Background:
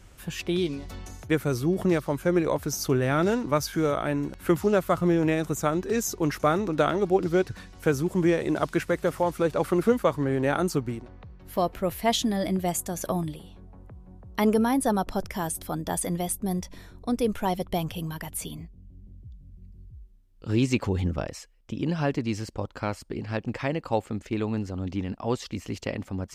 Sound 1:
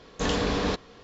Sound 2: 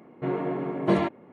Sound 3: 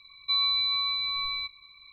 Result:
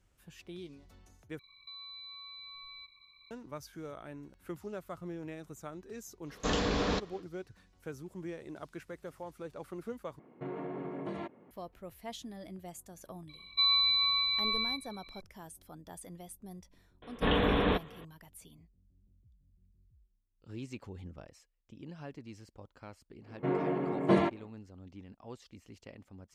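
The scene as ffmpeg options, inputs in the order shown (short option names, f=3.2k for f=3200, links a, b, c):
-filter_complex "[3:a]asplit=2[a][b];[1:a]asplit=2[c][d];[2:a]asplit=2[e][f];[0:a]volume=-19.5dB[g];[a]acompressor=threshold=-39dB:ratio=6:attack=3.2:release=140:knee=1:detection=peak[h];[e]acompressor=threshold=-27dB:ratio=6:attack=3.2:release=140:knee=1:detection=peak[i];[d]aresample=8000,aresample=44100[j];[g]asplit=3[k][l][m];[k]atrim=end=1.394[n];[h]atrim=end=1.92,asetpts=PTS-STARTPTS,volume=-8dB[o];[l]atrim=start=3.306:end=10.194[p];[i]atrim=end=1.32,asetpts=PTS-STARTPTS,volume=-8dB[q];[m]atrim=start=11.506[r];[c]atrim=end=1.03,asetpts=PTS-STARTPTS,volume=-4.5dB,afade=t=in:d=0.1,afade=t=out:st=0.93:d=0.1,adelay=6240[s];[b]atrim=end=1.92,asetpts=PTS-STARTPTS,volume=-1dB,afade=t=in:d=0.004:c=hsin,afade=t=out:st=1.916:d=0.004:c=hsin,adelay=13290[t];[j]atrim=end=1.03,asetpts=PTS-STARTPTS,volume=-1dB,afade=t=in:d=0.004:c=hsin,afade=t=out:st=1.026:d=0.004:c=hsin,adelay=17020[u];[f]atrim=end=1.32,asetpts=PTS-STARTPTS,volume=-3dB,afade=t=in:d=0.1,afade=t=out:st=1.22:d=0.1,adelay=23210[v];[n][o]acrossfade=d=0.004:c1=hsin:c2=hsin[w];[w][p]acrossfade=d=0.004:c1=hsin:c2=hsin[x];[x][q]acrossfade=d=0.004:c1=hsin:c2=hsin[y];[y][r]acrossfade=d=0.004:c1=hsin:c2=hsin[z];[z][s][t][u][v]amix=inputs=5:normalize=0"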